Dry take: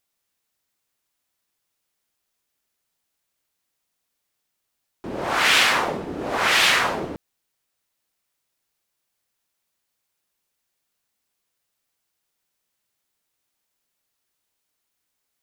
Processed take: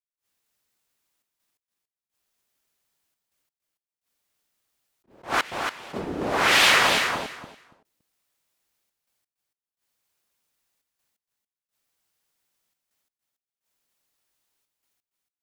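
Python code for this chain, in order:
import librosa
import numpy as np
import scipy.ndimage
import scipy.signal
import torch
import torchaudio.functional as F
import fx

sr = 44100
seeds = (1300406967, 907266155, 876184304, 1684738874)

p1 = fx.step_gate(x, sr, bpm=86, pattern='.xxxxxx.x..', floor_db=-24.0, edge_ms=4.5)
p2 = p1 + fx.echo_feedback(p1, sr, ms=283, feedback_pct=17, wet_db=-5.5, dry=0)
y = fx.attack_slew(p2, sr, db_per_s=240.0)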